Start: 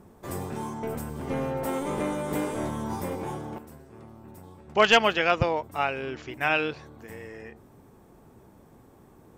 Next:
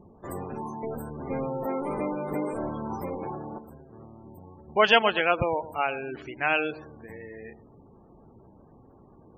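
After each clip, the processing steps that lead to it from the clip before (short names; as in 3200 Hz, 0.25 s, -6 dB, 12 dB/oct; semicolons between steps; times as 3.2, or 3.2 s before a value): dynamic EQ 100 Hz, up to -5 dB, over -46 dBFS, Q 0.73; dark delay 0.113 s, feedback 34%, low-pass 1200 Hz, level -14.5 dB; spectral gate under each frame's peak -20 dB strong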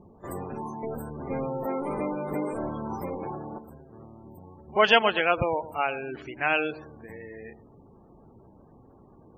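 pre-echo 39 ms -23 dB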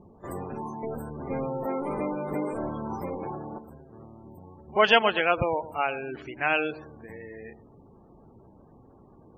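high shelf 8900 Hz -6 dB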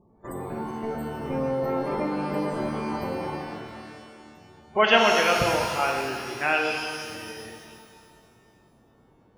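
gate -42 dBFS, range -8 dB; shimmer reverb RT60 2.1 s, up +12 st, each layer -8 dB, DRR 1.5 dB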